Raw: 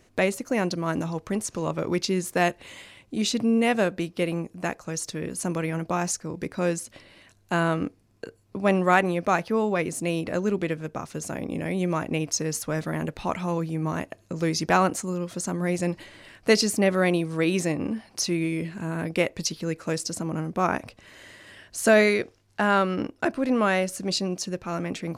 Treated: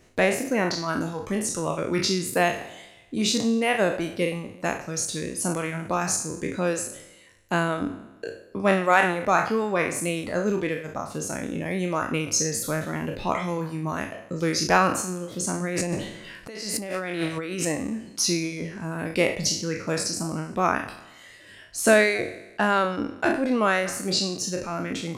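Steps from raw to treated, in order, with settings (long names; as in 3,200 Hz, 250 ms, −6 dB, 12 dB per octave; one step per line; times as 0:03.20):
peak hold with a decay on every bin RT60 1.20 s
reverb reduction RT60 0.87 s
0:15.64–0:17.65: compressor whose output falls as the input rises −30 dBFS, ratio −1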